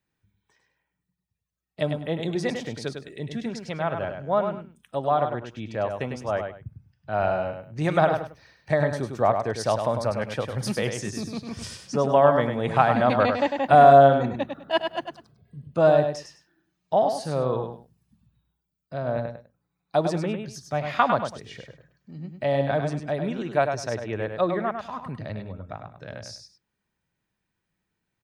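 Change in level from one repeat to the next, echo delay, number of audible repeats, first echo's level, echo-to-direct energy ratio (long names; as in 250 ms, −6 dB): −12.5 dB, 101 ms, 2, −6.5 dB, −6.5 dB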